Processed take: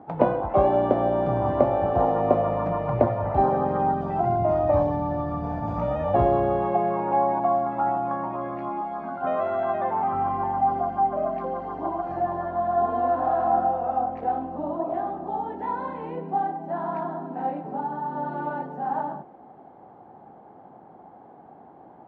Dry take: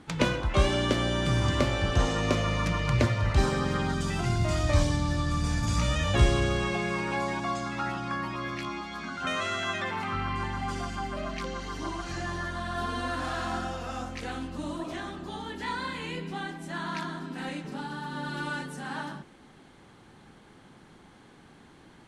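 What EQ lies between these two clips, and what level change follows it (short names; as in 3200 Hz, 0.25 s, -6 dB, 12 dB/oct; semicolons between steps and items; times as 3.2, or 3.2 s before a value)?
HPF 64 Hz; synth low-pass 750 Hz, resonance Q 4.9; low shelf 140 Hz -11 dB; +3.5 dB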